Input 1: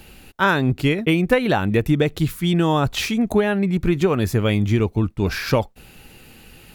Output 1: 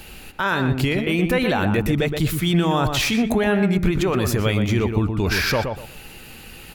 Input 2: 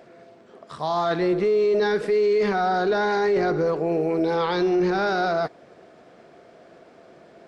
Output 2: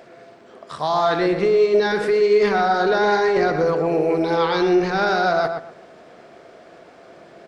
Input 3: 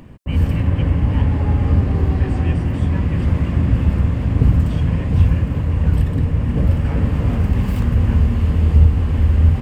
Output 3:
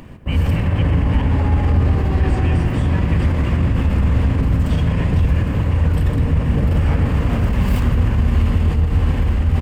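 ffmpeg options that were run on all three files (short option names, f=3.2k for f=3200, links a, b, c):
-filter_complex "[0:a]lowshelf=f=440:g=-6.5,alimiter=limit=-18dB:level=0:latency=1:release=24,lowshelf=f=74:g=5,asplit=2[a][b];[b]adelay=121,lowpass=f=2.1k:p=1,volume=-5.5dB,asplit=2[c][d];[d]adelay=121,lowpass=f=2.1k:p=1,volume=0.25,asplit=2[e][f];[f]adelay=121,lowpass=f=2.1k:p=1,volume=0.25[g];[a][c][e][g]amix=inputs=4:normalize=0,volume=6dB"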